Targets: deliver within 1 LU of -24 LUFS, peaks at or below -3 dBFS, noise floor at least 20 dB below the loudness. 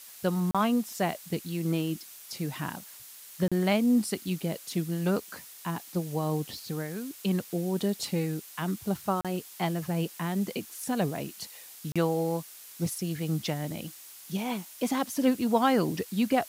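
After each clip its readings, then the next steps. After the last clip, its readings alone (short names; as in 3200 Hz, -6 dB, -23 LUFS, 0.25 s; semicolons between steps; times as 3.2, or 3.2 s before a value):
dropouts 4; longest dropout 36 ms; noise floor -48 dBFS; noise floor target -51 dBFS; loudness -30.5 LUFS; peak -11.0 dBFS; loudness target -24.0 LUFS
-> interpolate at 0.51/3.48/9.21/11.92, 36 ms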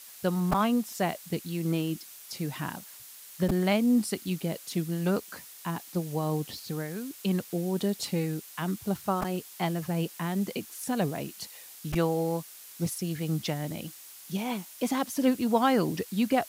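dropouts 0; noise floor -48 dBFS; noise floor target -50 dBFS
-> denoiser 6 dB, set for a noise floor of -48 dBFS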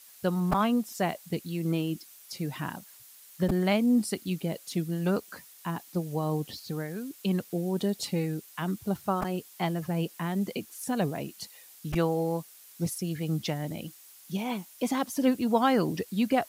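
noise floor -53 dBFS; loudness -30.5 LUFS; peak -10.5 dBFS; loudness target -24.0 LUFS
-> gain +6.5 dB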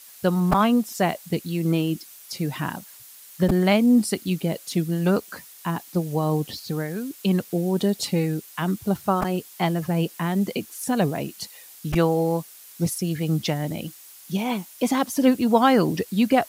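loudness -24.0 LUFS; peak -4.0 dBFS; noise floor -46 dBFS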